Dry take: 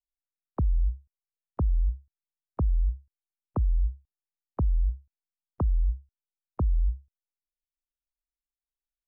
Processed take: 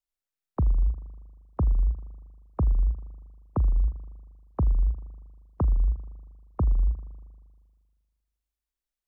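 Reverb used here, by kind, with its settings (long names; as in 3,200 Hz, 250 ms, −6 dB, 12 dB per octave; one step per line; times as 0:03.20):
spring reverb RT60 1.7 s, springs 39 ms, chirp 80 ms, DRR 13 dB
level +2 dB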